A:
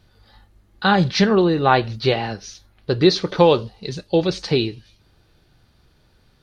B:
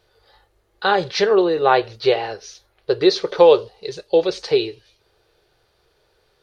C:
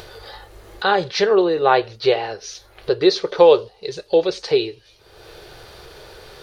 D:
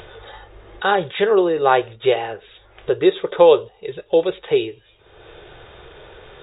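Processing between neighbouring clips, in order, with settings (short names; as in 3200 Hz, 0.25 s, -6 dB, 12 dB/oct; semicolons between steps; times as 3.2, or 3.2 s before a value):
resonant low shelf 320 Hz -9.5 dB, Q 3; gain -1.5 dB
upward compressor, threshold -23 dBFS
brick-wall FIR low-pass 3800 Hz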